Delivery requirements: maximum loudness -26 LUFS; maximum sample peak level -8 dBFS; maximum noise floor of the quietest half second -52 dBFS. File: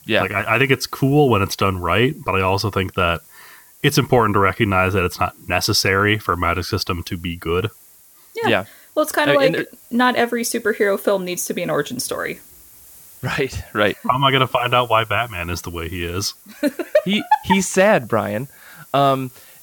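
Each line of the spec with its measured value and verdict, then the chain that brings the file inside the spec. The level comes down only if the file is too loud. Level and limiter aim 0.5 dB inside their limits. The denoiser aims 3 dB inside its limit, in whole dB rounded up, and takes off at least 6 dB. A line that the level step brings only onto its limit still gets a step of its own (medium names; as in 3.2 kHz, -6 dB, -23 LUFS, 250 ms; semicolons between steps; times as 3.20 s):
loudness -19.0 LUFS: fail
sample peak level -2.5 dBFS: fail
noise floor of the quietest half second -49 dBFS: fail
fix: trim -7.5 dB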